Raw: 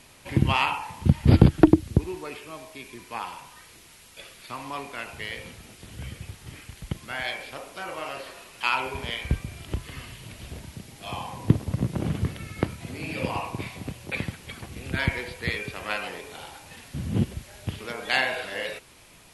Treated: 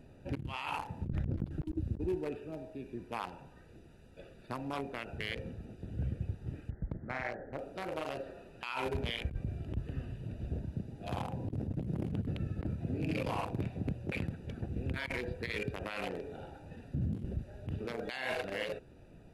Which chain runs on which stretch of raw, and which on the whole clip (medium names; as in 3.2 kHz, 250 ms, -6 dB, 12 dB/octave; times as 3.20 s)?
1.05–1.46 s: comb filter that takes the minimum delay 0.55 ms + low-pass 2.4 kHz 6 dB/octave + compressor with a negative ratio -27 dBFS
6.70–7.59 s: brick-wall FIR low-pass 2.2 kHz + loudspeaker Doppler distortion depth 0.86 ms
whole clip: local Wiener filter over 41 samples; compressor with a negative ratio -33 dBFS, ratio -1; peak limiter -23 dBFS; trim -2 dB